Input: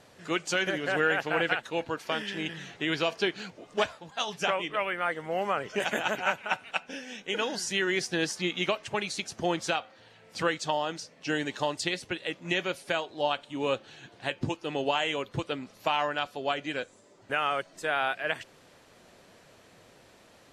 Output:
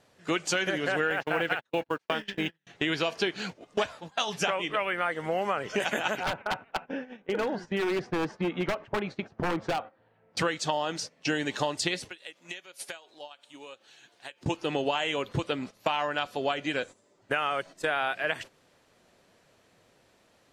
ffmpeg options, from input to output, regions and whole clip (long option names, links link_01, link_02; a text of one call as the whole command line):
ffmpeg -i in.wav -filter_complex "[0:a]asettb=1/sr,asplit=3[link_01][link_02][link_03];[link_01]atrim=end=1.104[link_04];[link_02]atrim=start=1.1:end=2.67,asetpts=PTS-STARTPTS,afade=type=in:duration=0.004:curve=qsin,afade=type=out:start_time=1.566:duration=0.004:curve=qsin,agate=range=-36dB:threshold=-35dB:ratio=16:release=100:detection=peak,highshelf=frequency=7100:gain=-12,acrusher=bits=8:mode=log:mix=0:aa=0.000001[link_05];[link_03]atrim=start=2.666[link_06];[link_04][link_05]acrossfade=duration=0.004:curve1=hsin:curve2=qsin[link_07];[link_07][link_06]acrossfade=duration=0.004:curve1=qsin:curve2=hsin,asettb=1/sr,asplit=3[link_08][link_09][link_10];[link_08]atrim=end=6.234[link_11];[link_09]atrim=start=6.23:end=10.37,asetpts=PTS-STARTPTS,afade=type=in:duration=0.004:curve=qsin,afade=type=out:start_time=4.136:duration=0.004:curve=qsin,lowpass=1300,aeval=exprs='0.0473*(abs(mod(val(0)/0.0473+3,4)-2)-1)':channel_layout=same[link_12];[link_10]atrim=start=10.366[link_13];[link_11][link_12]acrossfade=duration=0.004:curve1=hsin:curve2=qsin[link_14];[link_14][link_13]acrossfade=duration=0.004:curve1=qsin:curve2=hsin,asettb=1/sr,asplit=3[link_15][link_16][link_17];[link_15]atrim=end=12.094[link_18];[link_16]atrim=start=12.09:end=14.46,asetpts=PTS-STARTPTS,afade=type=in:duration=0.004:curve=qsin,afade=type=out:start_time=2.366:duration=0.004:curve=qsin,highpass=frequency=570:poles=1,acompressor=threshold=-41dB:ratio=20:attack=3.2:release=140:knee=1:detection=peak,aemphasis=mode=production:type=cd[link_19];[link_17]atrim=start=14.456[link_20];[link_18][link_19]acrossfade=duration=0.004:curve1=hsin:curve2=qsin[link_21];[link_21][link_20]acrossfade=duration=0.004:curve1=qsin:curve2=hsin,agate=range=-15dB:threshold=-43dB:ratio=16:detection=peak,acompressor=threshold=-35dB:ratio=3,volume=8dB" out.wav